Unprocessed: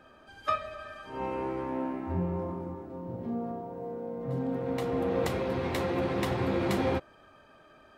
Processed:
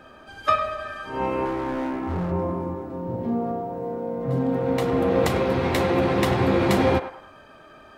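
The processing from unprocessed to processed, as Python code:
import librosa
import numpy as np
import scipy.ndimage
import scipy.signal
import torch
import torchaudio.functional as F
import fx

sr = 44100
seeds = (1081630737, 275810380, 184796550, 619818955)

y = fx.clip_hard(x, sr, threshold_db=-32.5, at=(1.45, 2.32))
y = fx.echo_banded(y, sr, ms=101, feedback_pct=41, hz=1100.0, wet_db=-9)
y = F.gain(torch.from_numpy(y), 8.5).numpy()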